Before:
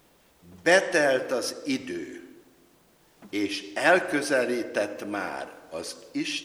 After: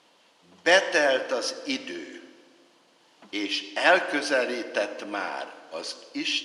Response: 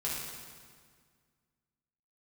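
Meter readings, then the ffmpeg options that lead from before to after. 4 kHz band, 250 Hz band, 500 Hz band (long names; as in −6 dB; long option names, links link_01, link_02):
+5.5 dB, −3.5 dB, −0.5 dB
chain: -filter_complex "[0:a]highpass=290,equalizer=frequency=390:width_type=q:width=4:gain=-5,equalizer=frequency=970:width_type=q:width=4:gain=4,equalizer=frequency=3000:width_type=q:width=4:gain=7,equalizer=frequency=4400:width_type=q:width=4:gain=5,equalizer=frequency=8200:width_type=q:width=4:gain=-6,lowpass=frequency=9100:width=0.5412,lowpass=frequency=9100:width=1.3066,asplit=2[link_01][link_02];[1:a]atrim=start_sample=2205,asetrate=28665,aresample=44100[link_03];[link_02][link_03]afir=irnorm=-1:irlink=0,volume=-25dB[link_04];[link_01][link_04]amix=inputs=2:normalize=0"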